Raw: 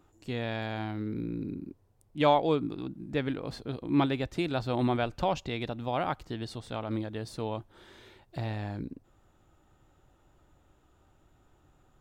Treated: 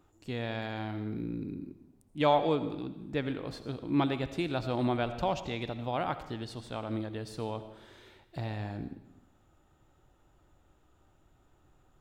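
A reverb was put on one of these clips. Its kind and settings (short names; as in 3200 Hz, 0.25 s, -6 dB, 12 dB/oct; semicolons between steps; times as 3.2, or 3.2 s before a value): digital reverb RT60 0.92 s, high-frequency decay 0.95×, pre-delay 40 ms, DRR 11 dB; gain -2 dB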